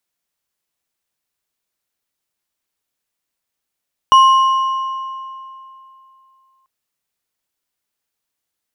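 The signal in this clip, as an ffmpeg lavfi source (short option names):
-f lavfi -i "aevalsrc='0.631*pow(10,-3*t/2.84)*sin(2*PI*1060*t)+0.158*pow(10,-3*t/2.095)*sin(2*PI*2922.4*t)+0.0398*pow(10,-3*t/1.712)*sin(2*PI*5728.2*t)+0.01*pow(10,-3*t/1.472)*sin(2*PI*9469*t)+0.00251*pow(10,-3*t/1.305)*sin(2*PI*14140.4*t)':d=2.54:s=44100"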